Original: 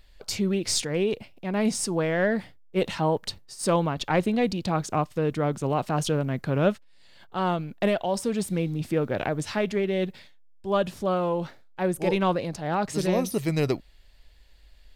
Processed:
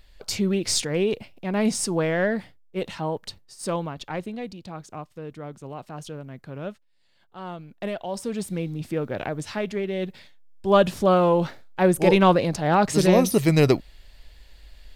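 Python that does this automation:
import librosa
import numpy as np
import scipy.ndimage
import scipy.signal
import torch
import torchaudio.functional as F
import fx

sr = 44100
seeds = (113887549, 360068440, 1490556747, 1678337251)

y = fx.gain(x, sr, db=fx.line((2.08, 2.0), (2.77, -4.0), (3.69, -4.0), (4.62, -11.5), (7.37, -11.5), (8.34, -2.0), (10.0, -2.0), (10.67, 7.0)))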